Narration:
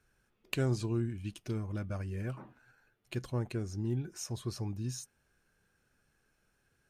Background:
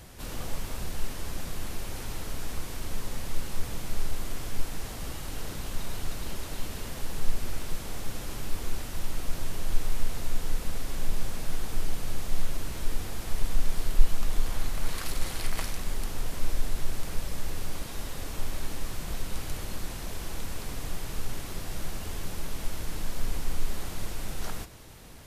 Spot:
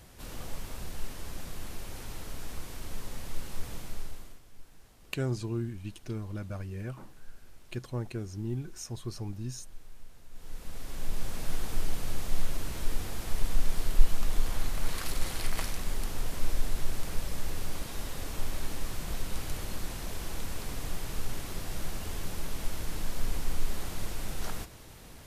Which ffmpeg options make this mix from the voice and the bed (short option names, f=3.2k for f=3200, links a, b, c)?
-filter_complex "[0:a]adelay=4600,volume=-0.5dB[a];[1:a]volume=15.5dB,afade=t=out:st=3.76:d=0.65:silence=0.149624,afade=t=in:st=10.3:d=1.2:silence=0.0944061[b];[a][b]amix=inputs=2:normalize=0"